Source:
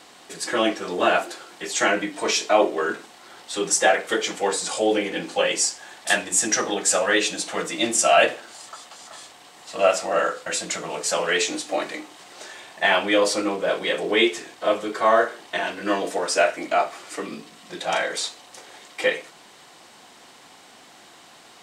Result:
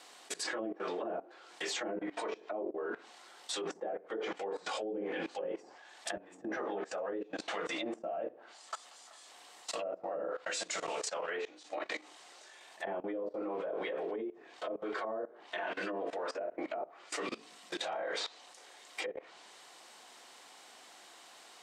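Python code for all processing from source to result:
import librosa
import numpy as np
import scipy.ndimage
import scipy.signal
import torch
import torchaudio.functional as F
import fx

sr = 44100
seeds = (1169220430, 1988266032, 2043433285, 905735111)

y = fx.chain(x, sr, fx.lowpass(hz=1000.0, slope=6),
    fx.doubler(ms=15.0, db=-6.5), at=(6.45, 6.98))
y = fx.chain(y, sr, fx.lowpass(hz=11000.0, slope=12),
    fx.level_steps(step_db=12), at=(10.42, 12.61))
y = fx.env_lowpass_down(y, sr, base_hz=340.0, full_db=-17.0)
y = fx.bass_treble(y, sr, bass_db=-15, treble_db=2)
y = fx.level_steps(y, sr, step_db=19)
y = y * librosa.db_to_amplitude(1.0)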